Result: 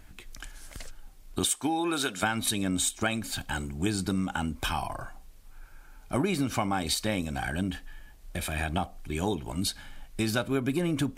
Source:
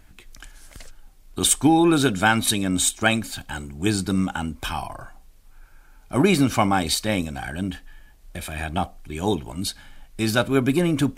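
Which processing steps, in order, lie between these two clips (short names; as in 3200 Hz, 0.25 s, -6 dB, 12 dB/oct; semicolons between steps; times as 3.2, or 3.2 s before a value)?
1.44–2.22 HPF 340 Hz -> 1100 Hz 6 dB/oct; compressor 5:1, threshold -25 dBFS, peak gain reduction 11.5 dB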